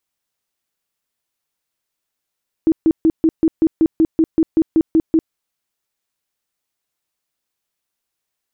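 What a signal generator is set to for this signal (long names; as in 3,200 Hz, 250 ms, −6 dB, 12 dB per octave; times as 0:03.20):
tone bursts 322 Hz, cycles 16, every 0.19 s, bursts 14, −9 dBFS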